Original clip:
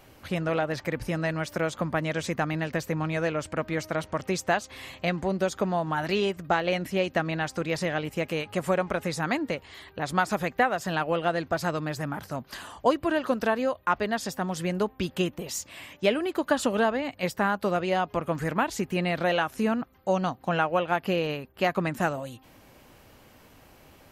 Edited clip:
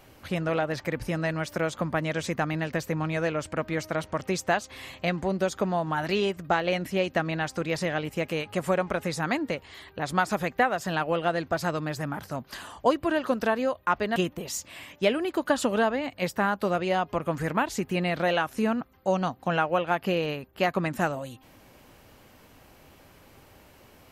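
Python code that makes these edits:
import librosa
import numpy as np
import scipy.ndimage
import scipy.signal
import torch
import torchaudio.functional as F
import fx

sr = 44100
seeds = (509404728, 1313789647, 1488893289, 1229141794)

y = fx.edit(x, sr, fx.cut(start_s=14.16, length_s=1.01), tone=tone)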